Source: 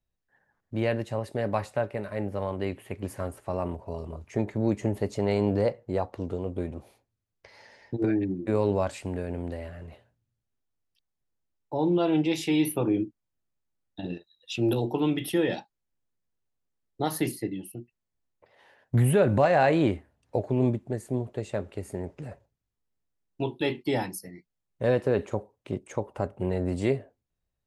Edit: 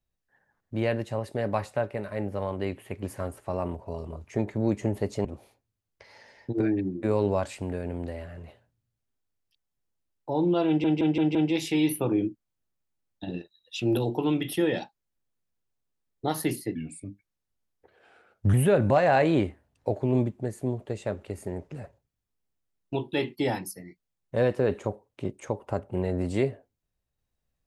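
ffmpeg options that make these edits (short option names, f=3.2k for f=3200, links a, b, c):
-filter_complex "[0:a]asplit=8[a][b][c][d][e][f][g][h];[a]atrim=end=5.252[i];[b]atrim=start=6.688:end=12.282[j];[c]atrim=start=12.108:end=12.282[k];[d]atrim=start=12.108:end=12.282[l];[e]atrim=start=12.108:end=12.282[m];[f]atrim=start=12.108:end=17.514[n];[g]atrim=start=17.51:end=19.01,asetpts=PTS-STARTPTS,asetrate=37044,aresample=44100[o];[h]atrim=start=19.006[p];[i][j]acrossfade=d=0.004:c1=hsin:c2=hsin[q];[q][k]acrossfade=d=0.004:c1=hsin:c2=hsin[r];[r][l]acrossfade=d=0.004:c1=hsin:c2=hsin[s];[s][m]acrossfade=d=0.004:c1=hsin:c2=hsin[t];[t][n]acrossfade=d=0.004:c1=hsin:c2=hsin[u];[u][o]acrossfade=d=0.004:c1=hsin:c2=hsin[v];[v][p]acrossfade=d=0.004:c1=hsin:c2=hsin"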